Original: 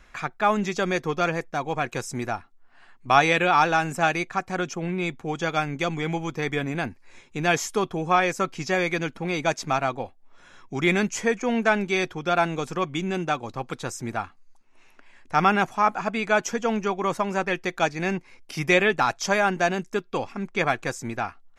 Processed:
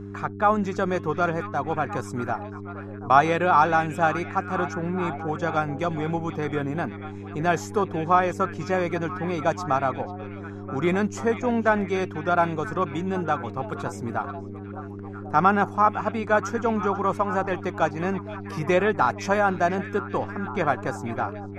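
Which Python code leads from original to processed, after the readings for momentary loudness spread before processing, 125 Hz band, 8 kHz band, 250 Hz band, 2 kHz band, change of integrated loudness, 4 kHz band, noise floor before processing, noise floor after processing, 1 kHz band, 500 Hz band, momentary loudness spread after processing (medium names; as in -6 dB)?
11 LU, +2.0 dB, -8.5 dB, +1.0 dB, -3.5 dB, 0.0 dB, -9.0 dB, -54 dBFS, -36 dBFS, +1.5 dB, +1.0 dB, 12 LU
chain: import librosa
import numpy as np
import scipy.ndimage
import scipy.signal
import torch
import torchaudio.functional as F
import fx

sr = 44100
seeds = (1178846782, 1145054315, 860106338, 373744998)

y = fx.dmg_buzz(x, sr, base_hz=100.0, harmonics=4, level_db=-37.0, tilt_db=-2, odd_only=False)
y = fx.high_shelf_res(y, sr, hz=1700.0, db=-8.0, q=1.5)
y = fx.echo_stepped(y, sr, ms=490, hz=2700.0, octaves=-0.7, feedback_pct=70, wet_db=-8.5)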